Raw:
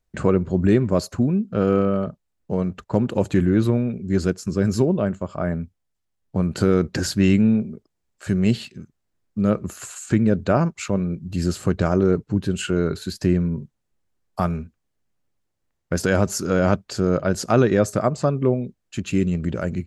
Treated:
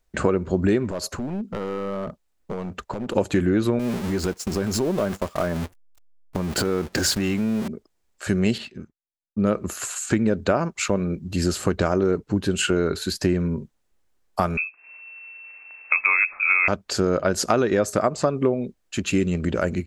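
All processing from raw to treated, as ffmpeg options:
ffmpeg -i in.wav -filter_complex "[0:a]asettb=1/sr,asplit=3[link_01][link_02][link_03];[link_01]atrim=end=0.914[link_04];[link_02]atrim=start=0.91:end=3.15,asetpts=PTS-STARTPTS,afade=type=in:duration=0.004:curve=qsin,afade=type=out:start_time=2.236:duration=0.004:curve=qsin,acompressor=threshold=-24dB:ratio=12:attack=3.2:release=140:knee=1:detection=peak,aeval=exprs='clip(val(0),-1,0.0473)':channel_layout=same[link_05];[link_03]atrim=start=3.146[link_06];[link_04][link_05]acrossfade=duration=0.004:curve1=hsin:curve2=qsin[link_07];[link_07][link_06]acrossfade=duration=0.004:curve1=qsin:curve2=hsin,asettb=1/sr,asplit=3[link_08][link_09][link_10];[link_08]atrim=end=3.794[link_11];[link_09]atrim=start=3.79:end=7.68,asetpts=PTS-STARTPTS,afade=type=in:duration=0.004:curve=qsin,afade=type=out:start_time=3.886:duration=0.004:curve=qsin,aeval=exprs='val(0)+0.5*0.0376*sgn(val(0))':channel_layout=same,acompressor=threshold=-22dB:ratio=4:attack=3.2:release=140:knee=1:detection=peak,agate=range=-24dB:threshold=-30dB:ratio=16:release=100:detection=peak[link_12];[link_10]atrim=start=7.676[link_13];[link_11][link_12]acrossfade=duration=0.004:curve1=hsin:curve2=qsin[link_14];[link_14][link_13]acrossfade=duration=0.004:curve1=qsin:curve2=hsin,asettb=1/sr,asplit=3[link_15][link_16][link_17];[link_15]atrim=end=8.584[link_18];[link_16]atrim=start=8.58:end=9.47,asetpts=PTS-STARTPTS,afade=type=in:duration=0.004:curve=qsin,afade=type=out:start_time=0.886:duration=0.004:curve=qsin,lowpass=frequency=2000:poles=1,agate=range=-33dB:threshold=-50dB:ratio=3:release=100:detection=peak[link_19];[link_17]atrim=start=9.466[link_20];[link_18][link_19]acrossfade=duration=0.004:curve1=hsin:curve2=qsin[link_21];[link_21][link_20]acrossfade=duration=0.004:curve1=qsin:curve2=hsin,asettb=1/sr,asplit=3[link_22][link_23][link_24];[link_22]atrim=end=14.574[link_25];[link_23]atrim=start=14.57:end=16.68,asetpts=PTS-STARTPTS,afade=type=in:duration=0.004:curve=qsin,afade=type=out:start_time=2.106:duration=0.004:curve=qsin,acompressor=mode=upward:threshold=-30dB:ratio=2.5:attack=3.2:release=140:knee=2.83:detection=peak,lowpass=frequency=2300:width_type=q:width=0.5098,lowpass=frequency=2300:width_type=q:width=0.6013,lowpass=frequency=2300:width_type=q:width=0.9,lowpass=frequency=2300:width_type=q:width=2.563,afreqshift=-2700[link_26];[link_24]atrim=start=16.676[link_27];[link_25][link_26]acrossfade=duration=0.004:curve1=hsin:curve2=qsin[link_28];[link_28][link_27]acrossfade=duration=0.004:curve1=qsin:curve2=hsin,equalizer=frequency=130:width_type=o:width=1.5:gain=-9.5,acompressor=threshold=-22dB:ratio=6,volume=6dB" out.wav

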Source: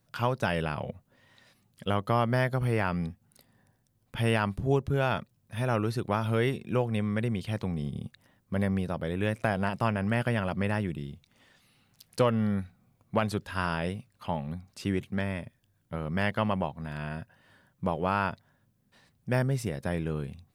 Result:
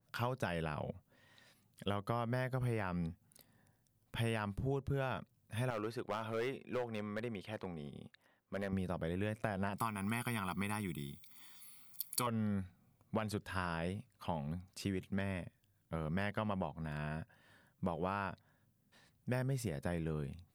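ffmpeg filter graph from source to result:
ffmpeg -i in.wav -filter_complex "[0:a]asettb=1/sr,asplit=3[link_01][link_02][link_03];[link_01]atrim=end=5.704[link_04];[link_02]atrim=start=5.7:end=8.73,asetpts=PTS-STARTPTS,afade=type=in:duration=0.004:curve=qsin,afade=type=out:start_time=3.026:duration=0.004:curve=qsin,bass=frequency=250:gain=-13,treble=frequency=4000:gain=-9,volume=26dB,asoftclip=hard,volume=-26dB[link_05];[link_03]atrim=start=8.726[link_06];[link_04][link_05]acrossfade=duration=0.004:curve1=hsin:curve2=qsin[link_07];[link_07][link_06]acrossfade=duration=0.004:curve1=qsin:curve2=hsin,asettb=1/sr,asplit=3[link_08][link_09][link_10];[link_08]atrim=end=9.784[link_11];[link_09]atrim=start=9.78:end=12.27,asetpts=PTS-STARTPTS,afade=type=in:duration=0.004:curve=qsin,afade=type=out:start_time=2.486:duration=0.004:curve=qsin,aemphasis=mode=production:type=bsi,bandreject=frequency=6100:width=5.1,aecho=1:1:0.9:0.99,atrim=end_sample=109809[link_12];[link_10]atrim=start=12.266[link_13];[link_11][link_12]acrossfade=duration=0.004:curve1=hsin:curve2=qsin[link_14];[link_14][link_13]acrossfade=duration=0.004:curve1=qsin:curve2=hsin,highshelf=frequency=9400:gain=6,acompressor=threshold=-28dB:ratio=6,adynamicequalizer=threshold=0.00355:dfrequency=2000:dqfactor=0.7:tfrequency=2000:tqfactor=0.7:attack=5:release=100:ratio=0.375:range=1.5:mode=cutabove:tftype=highshelf,volume=-5dB" out.wav

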